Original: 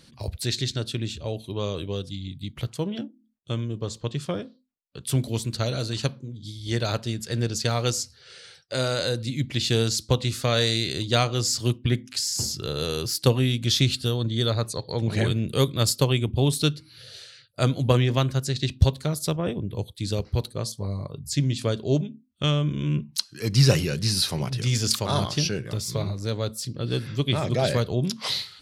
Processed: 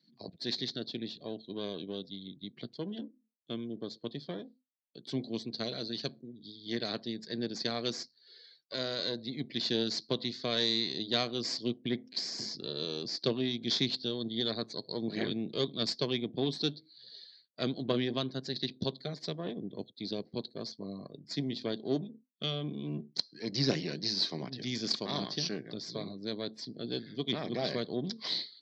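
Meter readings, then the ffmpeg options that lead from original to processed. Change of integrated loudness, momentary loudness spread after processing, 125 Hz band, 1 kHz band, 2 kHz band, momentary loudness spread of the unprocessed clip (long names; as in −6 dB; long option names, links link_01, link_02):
−9.5 dB, 12 LU, −18.5 dB, −11.5 dB, −10.0 dB, 11 LU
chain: -af "aeval=exprs='if(lt(val(0),0),0.251*val(0),val(0))':channel_layout=same,highpass=frequency=180:width=0.5412,highpass=frequency=180:width=1.3066,equalizer=frequency=540:width_type=q:width=4:gain=-6,equalizer=frequency=870:width_type=q:width=4:gain=-8,equalizer=frequency=1300:width_type=q:width=4:gain=-9,equalizer=frequency=2700:width_type=q:width=4:gain=-8,equalizer=frequency=4400:width_type=q:width=4:gain=5,lowpass=frequency=5100:width=0.5412,lowpass=frequency=5100:width=1.3066,afftdn=noise_reduction=15:noise_floor=-52,volume=-3.5dB"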